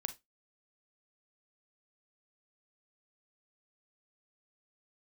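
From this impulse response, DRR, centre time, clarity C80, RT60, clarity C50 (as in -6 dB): 8.5 dB, 6 ms, 26.0 dB, 0.20 s, 15.5 dB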